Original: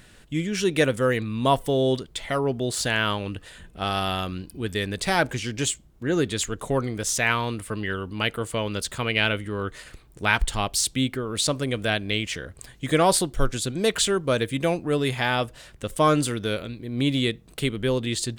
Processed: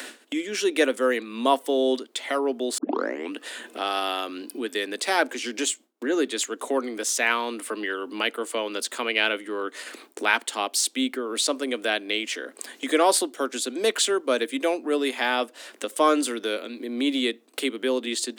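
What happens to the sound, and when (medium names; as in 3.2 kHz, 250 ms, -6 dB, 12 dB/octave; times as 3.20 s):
2.78 s: tape start 0.55 s
whole clip: gate with hold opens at -38 dBFS; steep high-pass 240 Hz 72 dB/octave; upward compressor, threshold -25 dBFS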